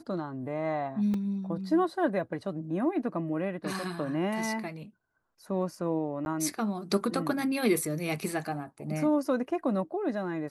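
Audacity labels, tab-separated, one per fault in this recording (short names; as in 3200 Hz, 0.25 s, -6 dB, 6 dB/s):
1.140000	1.140000	gap 2.3 ms
6.250000	6.260000	gap 11 ms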